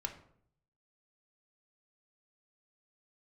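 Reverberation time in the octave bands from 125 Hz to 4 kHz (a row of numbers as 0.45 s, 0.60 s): 0.95 s, 0.75 s, 0.70 s, 0.60 s, 0.45 s, 0.40 s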